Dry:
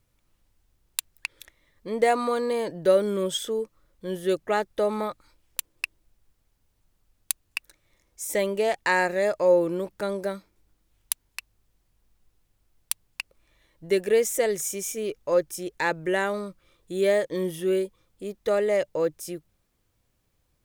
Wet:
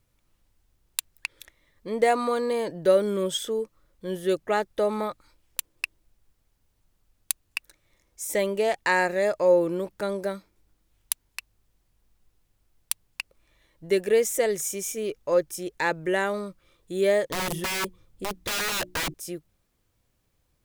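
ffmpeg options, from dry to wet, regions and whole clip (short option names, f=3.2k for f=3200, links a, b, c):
-filter_complex "[0:a]asettb=1/sr,asplit=3[a][b][c];[a]atrim=end=17.294[d];[b]atrim=start=17.29:end=19.14,asetpts=PTS-STARTPTS,afade=t=in:d=0.004:c=qsin,afade=t=out:st=1.846:d=0.004:c=qsin,lowshelf=f=220:g=11,bandreject=f=60:t=h:w=6,bandreject=f=120:t=h:w=6,bandreject=f=180:t=h:w=6,bandreject=f=240:t=h:w=6,bandreject=f=300:t=h:w=6,bandreject=f=360:t=h:w=6,aeval=exprs='(mod(14.1*val(0)+1,2)-1)/14.1':c=same[e];[c]atrim=start=19.136[f];[d][e]acrossfade=d=0.004:c1=hsin:c2=qsin[g];[g][f]acrossfade=d=0.004:c1=qsin:c2=hsin"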